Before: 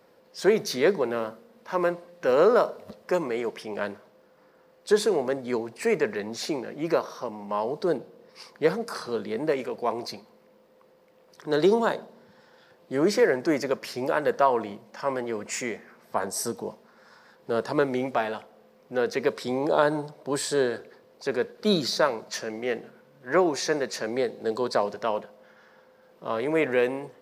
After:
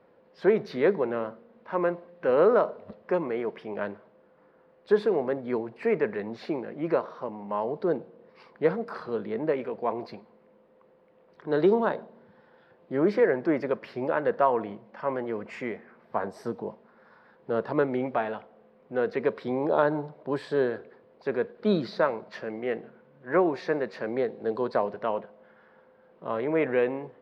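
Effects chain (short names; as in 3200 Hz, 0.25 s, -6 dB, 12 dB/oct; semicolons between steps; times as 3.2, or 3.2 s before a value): air absorption 420 m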